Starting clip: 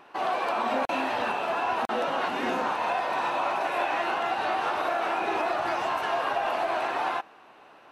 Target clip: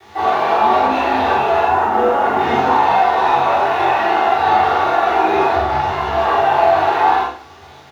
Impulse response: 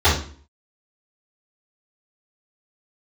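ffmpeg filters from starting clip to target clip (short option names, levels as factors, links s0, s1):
-filter_complex "[0:a]asettb=1/sr,asplit=3[s0][s1][s2];[s0]atrim=end=1.634[s3];[s1]atrim=start=1.63:end=2.39,asetpts=PTS-STARTPTS,afade=t=in:d=0.004:c=qsin,afade=t=out:st=0.756:d=0.004:c=qsin,lowpass=2000[s4];[s2]atrim=start=2.386[s5];[s3][s4]acrossfade=d=0.004:c1=hsin:c2=qsin[s6];[s6][s5]acrossfade=d=0.004:c1=qsin:c2=hsin,acrusher=bits=7:mix=0:aa=0.000001,flanger=delay=18:depth=4.6:speed=0.98,asettb=1/sr,asplit=3[s7][s8][s9];[s7]atrim=end=5.554[s10];[s8]atrim=start=5.55:end=6.15,asetpts=PTS-STARTPTS,afade=t=in:d=0.004:c=qsin,afade=t=out:st=0.596:d=0.004:c=qsin,aeval=exprs='(tanh(15.8*val(0)+0.7)-tanh(0.7))/15.8':c=same[s11];[s9]atrim=start=6.146[s12];[s10][s11]acrossfade=d=0.004:c1=hsin:c2=qsin[s13];[s13][s12]acrossfade=d=0.004:c1=qsin:c2=hsin,asplit=2[s14][s15];[s15]adelay=43,volume=0.708[s16];[s14][s16]amix=inputs=2:normalize=0[s17];[1:a]atrim=start_sample=2205[s18];[s17][s18]afir=irnorm=-1:irlink=0,volume=0.335"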